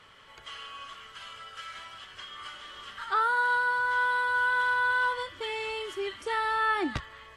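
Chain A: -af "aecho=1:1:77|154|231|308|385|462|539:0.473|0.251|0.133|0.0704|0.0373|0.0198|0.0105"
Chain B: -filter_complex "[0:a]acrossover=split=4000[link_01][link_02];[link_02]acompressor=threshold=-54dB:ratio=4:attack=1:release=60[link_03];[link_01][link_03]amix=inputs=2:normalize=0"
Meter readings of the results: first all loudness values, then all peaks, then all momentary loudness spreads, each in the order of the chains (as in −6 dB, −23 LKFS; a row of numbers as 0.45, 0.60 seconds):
−26.5, −27.5 LKFS; −14.5, −17.5 dBFS; 18, 18 LU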